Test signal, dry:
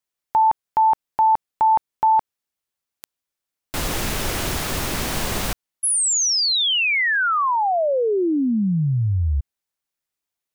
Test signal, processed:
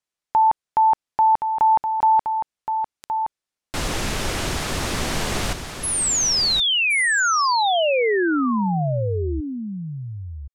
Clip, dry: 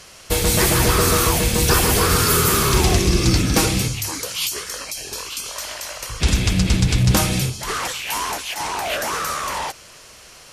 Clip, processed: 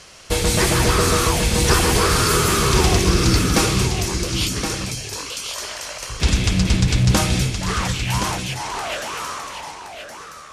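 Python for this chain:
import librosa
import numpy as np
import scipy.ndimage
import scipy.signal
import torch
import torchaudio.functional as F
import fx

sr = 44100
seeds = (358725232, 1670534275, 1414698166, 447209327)

y = fx.fade_out_tail(x, sr, length_s=2.49)
y = scipy.signal.sosfilt(scipy.signal.butter(2, 9100.0, 'lowpass', fs=sr, output='sos'), y)
y = y + 10.0 ** (-7.5 / 20.0) * np.pad(y, (int(1070 * sr / 1000.0), 0))[:len(y)]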